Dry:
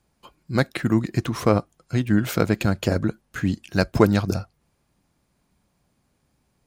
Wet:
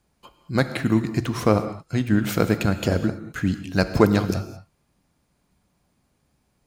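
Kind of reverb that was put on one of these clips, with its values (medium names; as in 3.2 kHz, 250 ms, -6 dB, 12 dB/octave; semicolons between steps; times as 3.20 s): gated-style reverb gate 240 ms flat, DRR 10 dB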